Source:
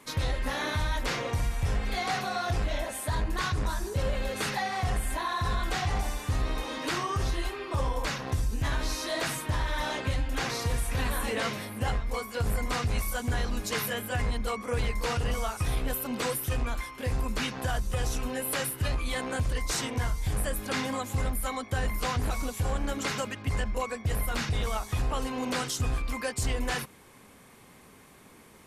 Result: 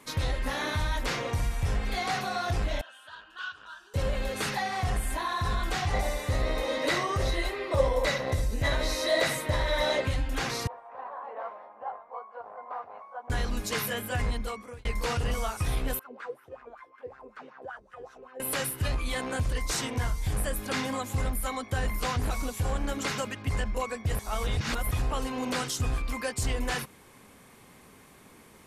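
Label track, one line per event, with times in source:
2.810000	3.940000	two resonant band-passes 2.1 kHz, apart 1 oct
5.930000	10.050000	small resonant body resonances 560/2000/3900 Hz, height 14 dB, ringing for 30 ms
10.670000	13.300000	Butterworth band-pass 820 Hz, Q 1.6
14.310000	14.850000	fade out
15.990000	18.400000	wah-wah 5.3 Hz 400–1600 Hz, Q 5.7
24.190000	24.910000	reverse

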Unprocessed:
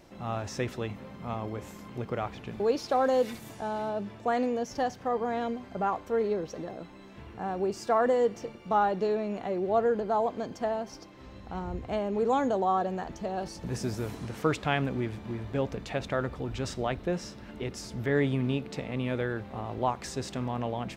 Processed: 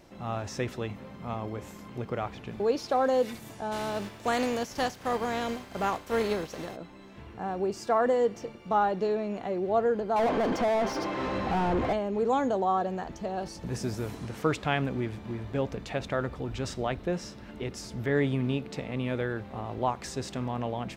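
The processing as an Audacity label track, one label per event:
3.710000	6.750000	spectral contrast reduction exponent 0.66
10.160000	11.930000	overdrive pedal drive 36 dB, tone 1 kHz, clips at -18 dBFS

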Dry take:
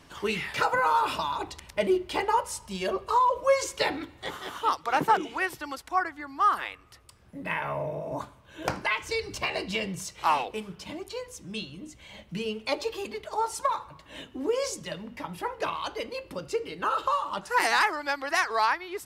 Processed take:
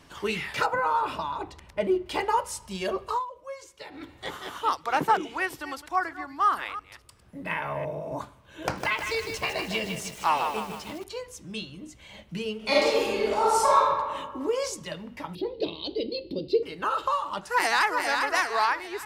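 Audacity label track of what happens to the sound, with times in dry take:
0.660000	2.060000	treble shelf 2.5 kHz -10.5 dB
3.070000	4.100000	dip -16.5 dB, fades 0.19 s
5.210000	7.920000	chunks repeated in reverse 176 ms, level -14 dB
8.620000	11.040000	bit-crushed delay 155 ms, feedback 55%, word length 7-bit, level -5.5 dB
12.570000	13.840000	reverb throw, RT60 1.5 s, DRR -8.5 dB
15.350000	16.630000	FFT filter 130 Hz 0 dB, 210 Hz +6 dB, 360 Hz +12 dB, 620 Hz -3 dB, 1.4 kHz -28 dB, 2.1 kHz -13 dB, 4.2 kHz +11 dB, 6.6 kHz -23 dB, 9.6 kHz -22 dB, 14 kHz -12 dB
17.470000	18.000000	echo throw 400 ms, feedback 45%, level -4.5 dB

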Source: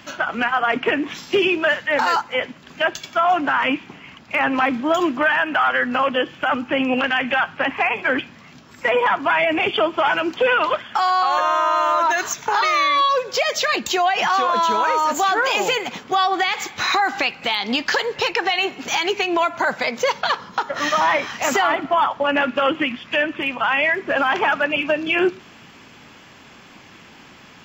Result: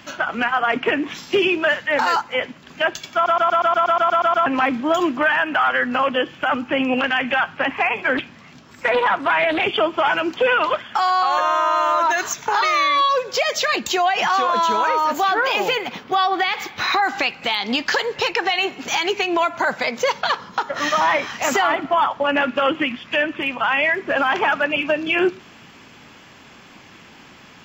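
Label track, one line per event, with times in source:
3.140000	3.140000	stutter in place 0.12 s, 11 plays
8.170000	9.640000	loudspeaker Doppler distortion depth 0.34 ms
14.880000	17.030000	peaking EQ 7.3 kHz -11 dB 0.53 oct

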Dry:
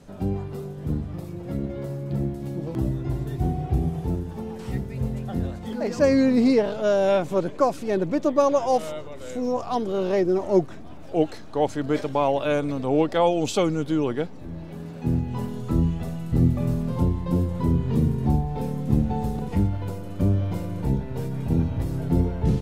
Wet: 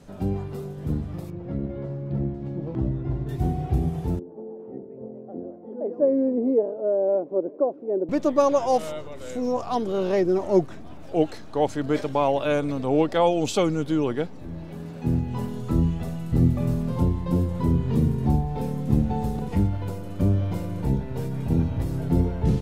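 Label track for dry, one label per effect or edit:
1.300000	3.290000	tape spacing loss at 10 kHz 26 dB
4.190000	8.090000	Butterworth band-pass 420 Hz, Q 1.2

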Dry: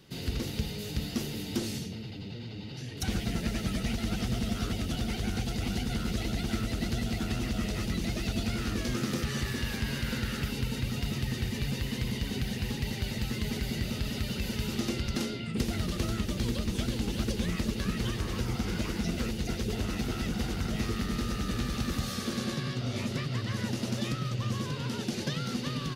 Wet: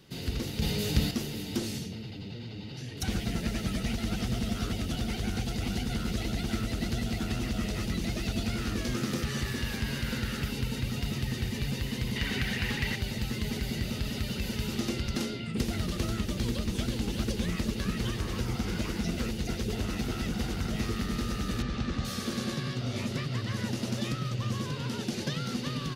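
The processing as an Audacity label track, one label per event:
0.620000	1.110000	gain +7 dB
12.160000	12.960000	peaking EQ 1.8 kHz +11.5 dB 1.6 oct
21.620000	22.050000	distance through air 120 m

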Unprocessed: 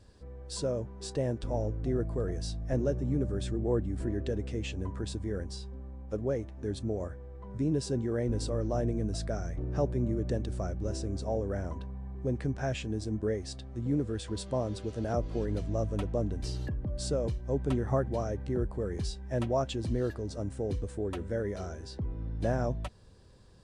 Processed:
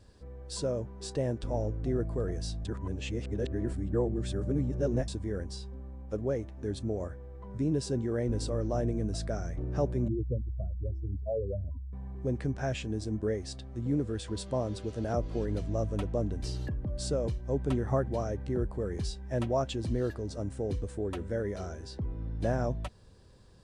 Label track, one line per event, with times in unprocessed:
2.650000	5.080000	reverse
10.080000	11.930000	spectral contrast enhancement exponent 3.1

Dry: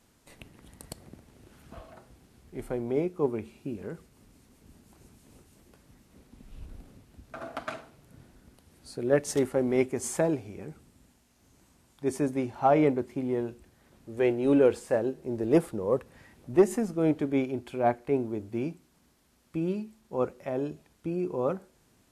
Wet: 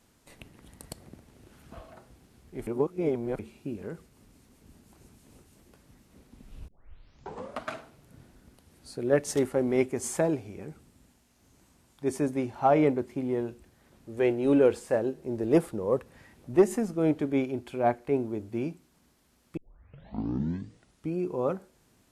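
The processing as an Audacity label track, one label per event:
2.670000	3.390000	reverse
6.680000	6.680000	tape start 0.97 s
19.570000	19.570000	tape start 1.58 s

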